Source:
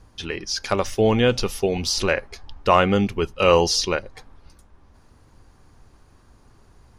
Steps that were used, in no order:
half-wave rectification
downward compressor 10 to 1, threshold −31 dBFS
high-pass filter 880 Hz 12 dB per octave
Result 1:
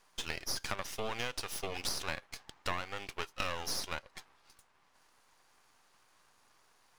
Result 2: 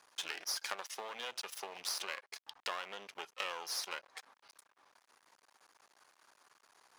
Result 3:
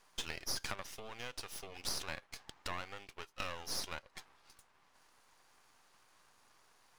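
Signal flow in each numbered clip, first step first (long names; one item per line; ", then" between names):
high-pass filter, then half-wave rectification, then downward compressor
half-wave rectification, then downward compressor, then high-pass filter
downward compressor, then high-pass filter, then half-wave rectification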